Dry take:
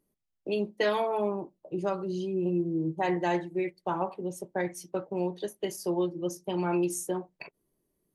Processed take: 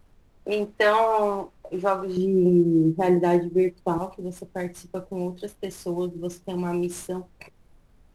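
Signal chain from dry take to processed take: CVSD coder 64 kbps; peaking EQ 1.2 kHz +13.5 dB 2.9 oct, from 2.17 s 250 Hz, from 3.98 s 62 Hz; added noise brown -53 dBFS; trim -2 dB

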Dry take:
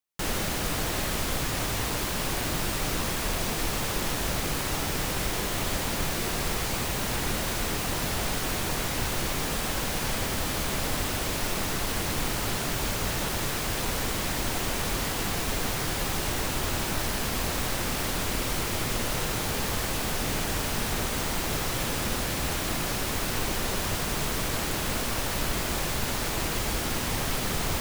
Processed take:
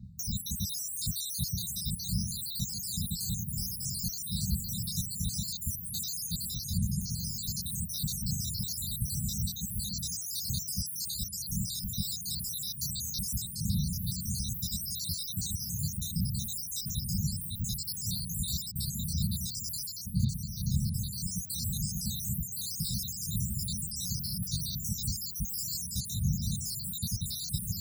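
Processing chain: random holes in the spectrogram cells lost 77%; wind noise 190 Hz -36 dBFS; high-pass 65 Hz; gain riding 0.5 s; brick-wall FIR band-stop 220–3600 Hz; trim +3 dB

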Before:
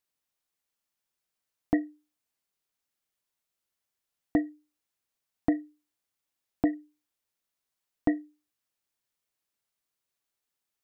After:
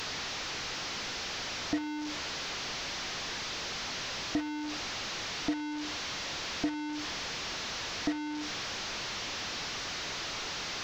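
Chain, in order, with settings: one-bit delta coder 32 kbps, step -25.5 dBFS; waveshaping leveller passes 1; trim -8.5 dB

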